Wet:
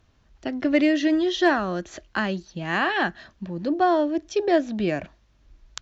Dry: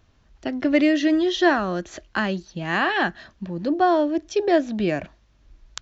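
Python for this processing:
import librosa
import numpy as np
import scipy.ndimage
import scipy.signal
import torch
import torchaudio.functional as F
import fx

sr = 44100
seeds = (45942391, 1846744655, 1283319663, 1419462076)

p1 = 10.0 ** (-22.5 / 20.0) * np.tanh(x / 10.0 ** (-22.5 / 20.0))
p2 = x + F.gain(torch.from_numpy(p1), -4.0).numpy()
p3 = fx.cheby_harmonics(p2, sr, harmonics=(7,), levels_db=(-28,), full_scale_db=-4.0)
y = F.gain(torch.from_numpy(p3), -3.0).numpy()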